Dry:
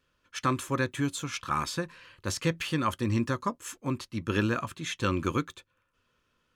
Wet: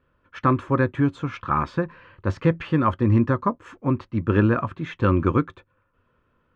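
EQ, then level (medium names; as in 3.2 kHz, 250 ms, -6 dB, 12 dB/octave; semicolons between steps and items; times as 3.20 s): low-pass 1.4 kHz 12 dB/octave; peaking EQ 89 Hz +3 dB; +8.5 dB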